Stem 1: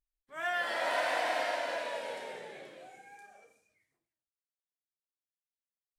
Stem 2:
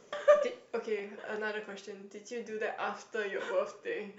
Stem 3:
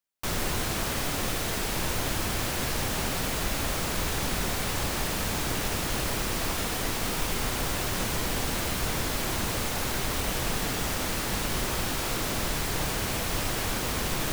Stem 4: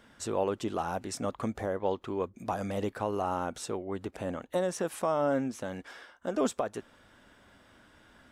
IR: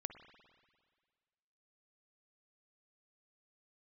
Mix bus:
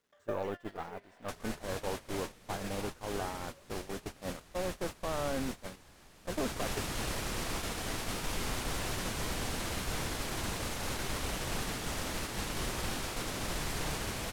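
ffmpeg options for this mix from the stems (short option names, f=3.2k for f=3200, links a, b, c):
-filter_complex "[0:a]acompressor=threshold=-39dB:ratio=10,volume=-1dB[a];[1:a]volume=-11.5dB,asplit=3[b][c][d];[c]volume=-8dB[e];[2:a]lowpass=12k,adelay=1050,volume=-1dB,afade=t=in:st=6.27:d=0.51:silence=0.316228,asplit=2[f][g];[g]volume=-5.5dB[h];[3:a]acrossover=split=2700[i][j];[j]acompressor=threshold=-52dB:ratio=4:attack=1:release=60[k];[i][k]amix=inputs=2:normalize=0,acrusher=bits=8:mix=0:aa=0.000001,volume=-3dB[l];[d]apad=whole_len=263832[m];[a][m]sidechaincompress=threshold=-48dB:ratio=8:attack=8.6:release=134[n];[n][l]amix=inputs=2:normalize=0,aeval=exprs='0.112*(cos(1*acos(clip(val(0)/0.112,-1,1)))-cos(1*PI/2))+0.00224*(cos(3*acos(clip(val(0)/0.112,-1,1)))-cos(3*PI/2))+0.01*(cos(6*acos(clip(val(0)/0.112,-1,1)))-cos(6*PI/2))+0.00251*(cos(7*acos(clip(val(0)/0.112,-1,1)))-cos(7*PI/2))':c=same,alimiter=level_in=1.5dB:limit=-24dB:level=0:latency=1:release=15,volume=-1.5dB,volume=0dB[o];[b][f]amix=inputs=2:normalize=0,asoftclip=type=tanh:threshold=-22dB,acompressor=threshold=-40dB:ratio=16,volume=0dB[p];[4:a]atrim=start_sample=2205[q];[e][h]amix=inputs=2:normalize=0[r];[r][q]afir=irnorm=-1:irlink=0[s];[o][p][s]amix=inputs=3:normalize=0,agate=range=-18dB:threshold=-35dB:ratio=16:detection=peak"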